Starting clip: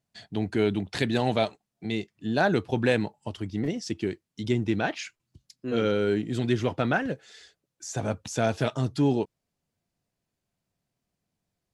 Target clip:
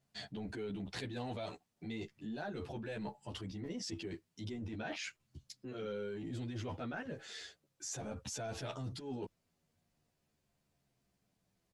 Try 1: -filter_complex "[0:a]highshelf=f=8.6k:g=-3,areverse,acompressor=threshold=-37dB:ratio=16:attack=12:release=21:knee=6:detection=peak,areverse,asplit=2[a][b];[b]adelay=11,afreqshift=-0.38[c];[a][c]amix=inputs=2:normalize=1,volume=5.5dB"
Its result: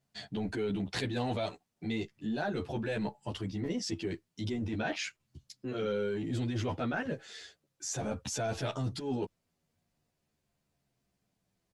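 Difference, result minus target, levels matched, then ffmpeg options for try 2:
compressor: peak gain reduction -8.5 dB
-filter_complex "[0:a]highshelf=f=8.6k:g=-3,areverse,acompressor=threshold=-46dB:ratio=16:attack=12:release=21:knee=6:detection=peak,areverse,asplit=2[a][b];[b]adelay=11,afreqshift=-0.38[c];[a][c]amix=inputs=2:normalize=1,volume=5.5dB"

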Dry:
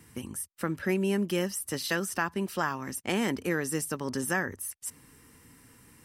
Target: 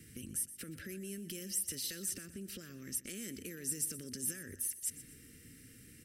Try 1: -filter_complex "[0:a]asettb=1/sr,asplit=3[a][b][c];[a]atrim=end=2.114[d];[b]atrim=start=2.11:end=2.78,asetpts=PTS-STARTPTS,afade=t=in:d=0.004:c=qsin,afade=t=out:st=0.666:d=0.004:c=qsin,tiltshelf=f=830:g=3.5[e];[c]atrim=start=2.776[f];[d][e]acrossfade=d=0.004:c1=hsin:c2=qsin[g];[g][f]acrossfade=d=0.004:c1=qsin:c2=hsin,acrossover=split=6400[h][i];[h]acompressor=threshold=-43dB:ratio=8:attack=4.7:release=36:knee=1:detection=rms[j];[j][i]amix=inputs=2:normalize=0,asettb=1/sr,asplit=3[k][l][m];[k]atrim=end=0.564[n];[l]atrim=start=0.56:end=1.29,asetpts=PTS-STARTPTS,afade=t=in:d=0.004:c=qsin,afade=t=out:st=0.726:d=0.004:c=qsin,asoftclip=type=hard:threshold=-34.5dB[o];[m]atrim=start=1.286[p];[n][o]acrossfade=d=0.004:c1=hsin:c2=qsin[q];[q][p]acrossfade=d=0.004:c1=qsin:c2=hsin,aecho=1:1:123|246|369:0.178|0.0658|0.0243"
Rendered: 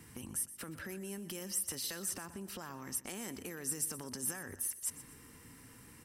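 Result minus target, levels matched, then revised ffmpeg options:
1000 Hz band +16.5 dB
-filter_complex "[0:a]asettb=1/sr,asplit=3[a][b][c];[a]atrim=end=2.114[d];[b]atrim=start=2.11:end=2.78,asetpts=PTS-STARTPTS,afade=t=in:d=0.004:c=qsin,afade=t=out:st=0.666:d=0.004:c=qsin,tiltshelf=f=830:g=3.5[e];[c]atrim=start=2.776[f];[d][e]acrossfade=d=0.004:c1=hsin:c2=qsin[g];[g][f]acrossfade=d=0.004:c1=qsin:c2=hsin,acrossover=split=6400[h][i];[h]acompressor=threshold=-43dB:ratio=8:attack=4.7:release=36:knee=1:detection=rms,asuperstop=centerf=890:order=4:qfactor=0.68[j];[j][i]amix=inputs=2:normalize=0,asettb=1/sr,asplit=3[k][l][m];[k]atrim=end=0.564[n];[l]atrim=start=0.56:end=1.29,asetpts=PTS-STARTPTS,afade=t=in:d=0.004:c=qsin,afade=t=out:st=0.726:d=0.004:c=qsin,asoftclip=type=hard:threshold=-34.5dB[o];[m]atrim=start=1.286[p];[n][o]acrossfade=d=0.004:c1=hsin:c2=qsin[q];[q][p]acrossfade=d=0.004:c1=qsin:c2=hsin,aecho=1:1:123|246|369:0.178|0.0658|0.0243"

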